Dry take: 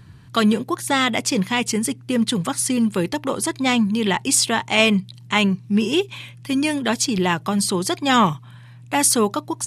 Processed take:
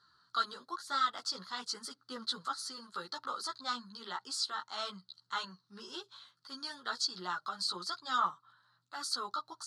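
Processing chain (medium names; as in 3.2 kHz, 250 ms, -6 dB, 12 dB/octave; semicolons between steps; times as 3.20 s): gain riding within 3 dB 0.5 s; two resonant band-passes 2.4 kHz, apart 1.7 oct; chorus voices 6, 0.98 Hz, delay 14 ms, depth 3 ms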